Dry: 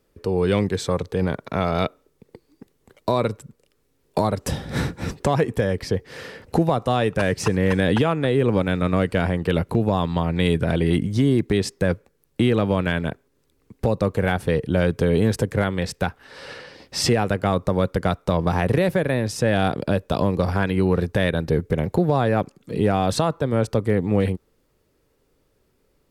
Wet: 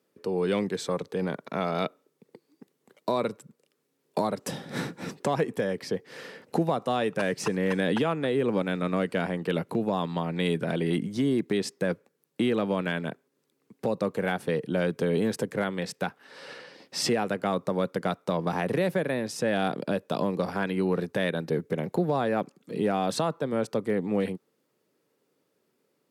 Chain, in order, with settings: high-pass 160 Hz 24 dB/octave; trim -5.5 dB

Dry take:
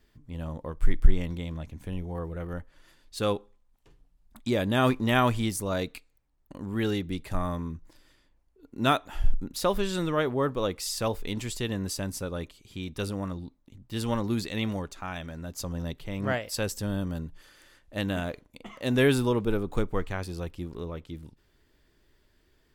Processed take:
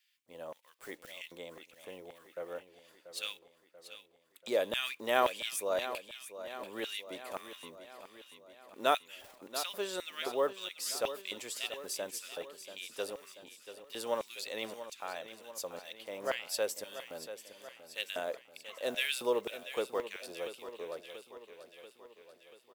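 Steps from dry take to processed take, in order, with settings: block-companded coder 7-bit; LFO high-pass square 1.9 Hz 520–2600 Hz; treble shelf 7.2 kHz +6 dB; feedback delay 686 ms, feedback 58%, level -12 dB; trim -7 dB

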